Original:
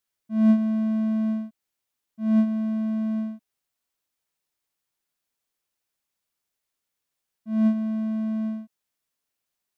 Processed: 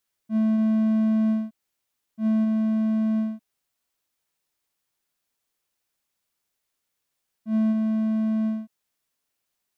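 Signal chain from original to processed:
brickwall limiter −19 dBFS, peak gain reduction 9.5 dB
level +3 dB

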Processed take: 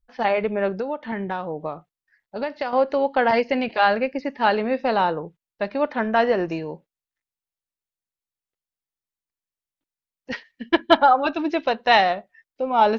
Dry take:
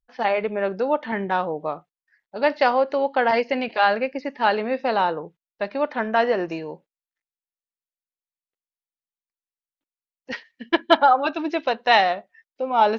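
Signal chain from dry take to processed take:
low-shelf EQ 150 Hz +11.5 dB
0:00.69–0:02.73: downward compressor 6 to 1, threshold −24 dBFS, peak gain reduction 11 dB

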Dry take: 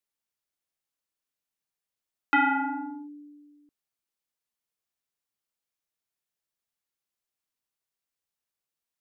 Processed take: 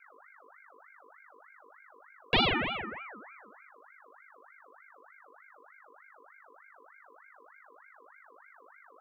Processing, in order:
mains hum 50 Hz, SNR 17 dB
frequency shifter +220 Hz
ring modulator whose carrier an LFO sweeps 1,300 Hz, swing 45%, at 3.3 Hz

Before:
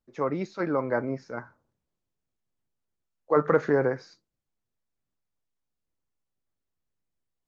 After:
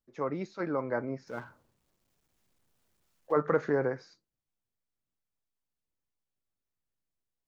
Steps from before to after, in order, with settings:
0:01.27–0:03.32: mu-law and A-law mismatch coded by mu
level −5 dB

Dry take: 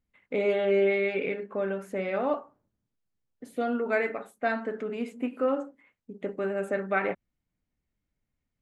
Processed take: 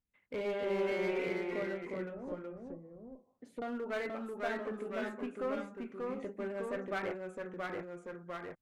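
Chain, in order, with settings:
asymmetric clip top −25.5 dBFS
0:01.76–0:03.62: treble cut that deepens with the level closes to 320 Hz, closed at −27.5 dBFS
delay with pitch and tempo change per echo 264 ms, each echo −1 semitone, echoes 2
level −9 dB

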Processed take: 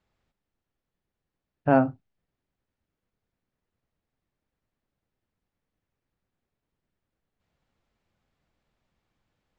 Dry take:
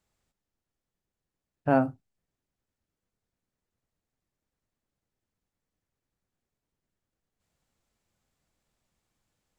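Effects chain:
low-pass filter 3,600 Hz 12 dB per octave
level +3 dB

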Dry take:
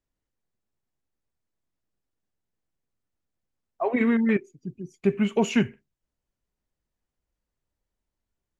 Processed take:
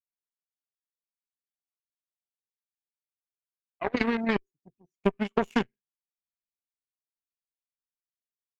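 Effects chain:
harmonic generator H 3 −10 dB, 7 −44 dB, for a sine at −10 dBFS
downward compressor 5 to 1, threshold −29 dBFS, peak gain reduction 11 dB
level +8.5 dB

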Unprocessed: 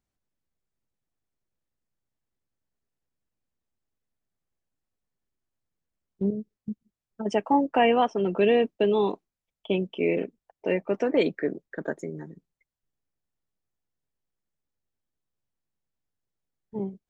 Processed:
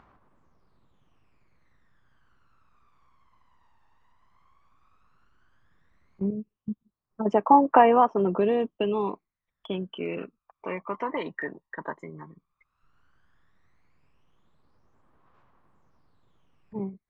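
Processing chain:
low-pass filter 2,200 Hz 12 dB per octave
spectral tilt +1.5 dB per octave
downward compressor 2 to 1, threshold −25 dBFS, peak gain reduction 5 dB
phase shifter 0.13 Hz, delay 1.1 ms, feedback 69%
upward compression, threshold −43 dBFS
parametric band 1,100 Hz +13 dB 0.74 octaves
level −2.5 dB

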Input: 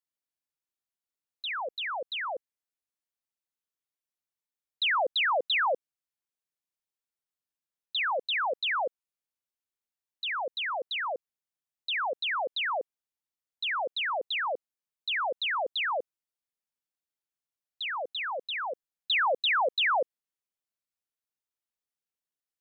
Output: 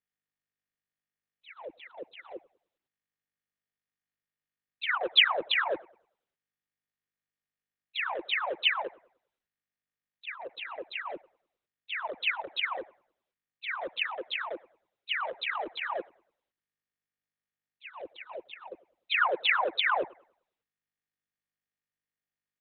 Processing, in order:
adaptive Wiener filter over 41 samples
low-pass that shuts in the quiet parts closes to 1,800 Hz, open at −29 dBFS
bucket-brigade delay 99 ms, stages 2,048, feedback 32%, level −23 dB
pitch-shifted copies added −7 semitones −7 dB
level −1.5 dB
Opus 6 kbit/s 48,000 Hz

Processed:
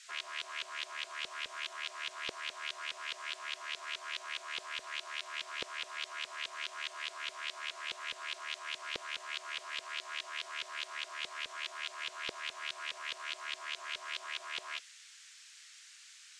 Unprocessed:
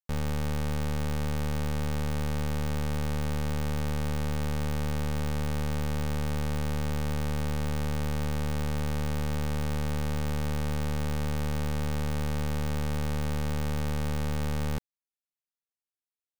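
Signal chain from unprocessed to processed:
gate on every frequency bin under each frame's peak −30 dB weak
auto-filter low-pass saw up 4.8 Hz 460–3,900 Hz
noise in a band 1,500–8,000 Hz −62 dBFS
level +6 dB

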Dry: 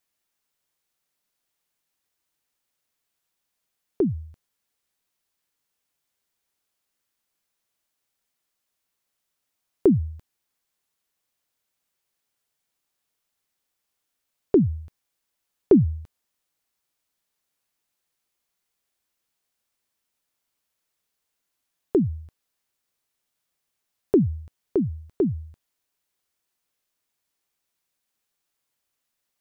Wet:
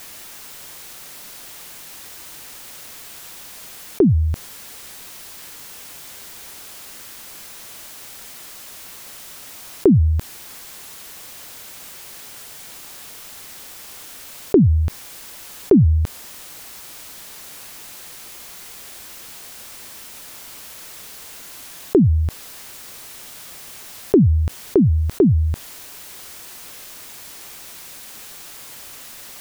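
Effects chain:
envelope flattener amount 70%
level +1.5 dB

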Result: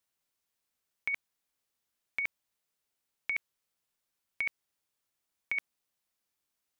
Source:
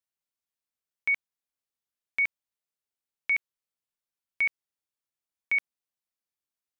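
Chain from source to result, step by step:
compressor whose output falls as the input rises −29 dBFS, ratio −0.5

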